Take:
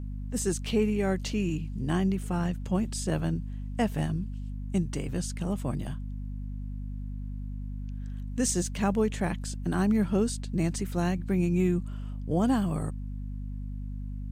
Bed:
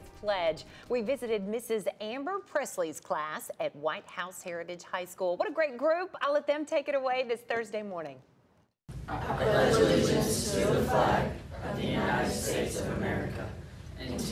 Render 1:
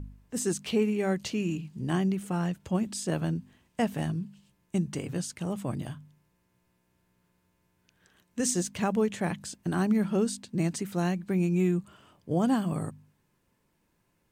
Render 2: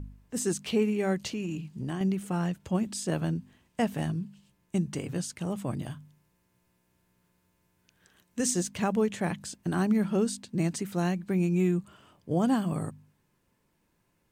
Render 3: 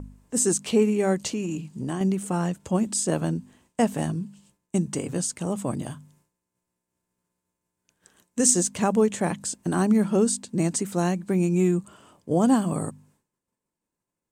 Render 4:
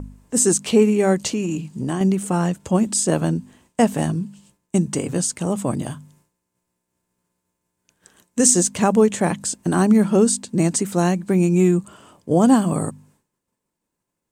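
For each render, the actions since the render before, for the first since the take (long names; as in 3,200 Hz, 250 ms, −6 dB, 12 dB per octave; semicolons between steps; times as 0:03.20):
hum removal 50 Hz, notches 5
0:01.26–0:02.01: downward compressor, threshold −29 dBFS; 0:05.90–0:08.43: high-shelf EQ 5,400 Hz +4 dB
downward expander −60 dBFS; octave-band graphic EQ 250/500/1,000/8,000 Hz +5/+5/+5/+12 dB
level +5.5 dB; brickwall limiter −3 dBFS, peak gain reduction 2 dB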